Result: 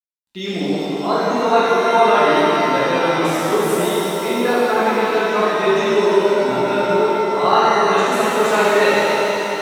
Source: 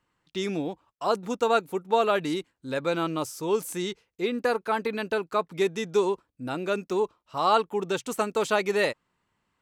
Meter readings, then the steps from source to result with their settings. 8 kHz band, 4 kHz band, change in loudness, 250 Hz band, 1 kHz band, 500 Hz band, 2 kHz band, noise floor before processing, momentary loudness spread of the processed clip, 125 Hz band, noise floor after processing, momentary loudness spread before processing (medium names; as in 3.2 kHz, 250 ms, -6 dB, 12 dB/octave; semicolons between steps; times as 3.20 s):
+10.0 dB, +11.0 dB, +11.5 dB, +10.5 dB, +12.5 dB, +11.0 dB, +13.0 dB, -78 dBFS, 6 LU, +10.0 dB, -25 dBFS, 9 LU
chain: spectral gate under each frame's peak -30 dB strong; crossover distortion -53 dBFS; pitch-shifted reverb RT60 3.6 s, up +7 st, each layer -8 dB, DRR -10.5 dB